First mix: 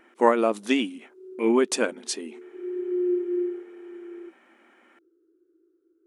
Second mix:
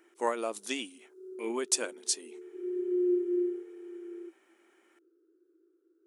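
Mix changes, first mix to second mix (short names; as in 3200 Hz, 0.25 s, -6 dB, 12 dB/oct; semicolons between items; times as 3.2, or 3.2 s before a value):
speech -10.5 dB; master: add tone controls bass -12 dB, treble +14 dB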